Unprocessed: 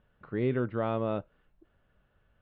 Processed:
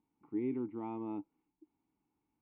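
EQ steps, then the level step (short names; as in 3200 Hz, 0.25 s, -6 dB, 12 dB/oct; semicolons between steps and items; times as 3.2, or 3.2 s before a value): vowel filter u; high shelf 2400 Hz -11.5 dB; +5.0 dB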